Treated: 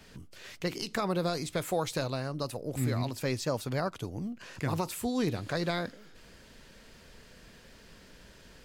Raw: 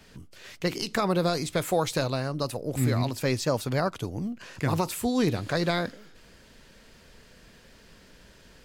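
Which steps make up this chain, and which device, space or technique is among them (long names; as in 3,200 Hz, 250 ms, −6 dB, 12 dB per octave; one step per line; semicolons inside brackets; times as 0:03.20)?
parallel compression (in parallel at −1 dB: downward compressor, threshold −44 dBFS, peak gain reduction 21.5 dB)
on the sum: level −6 dB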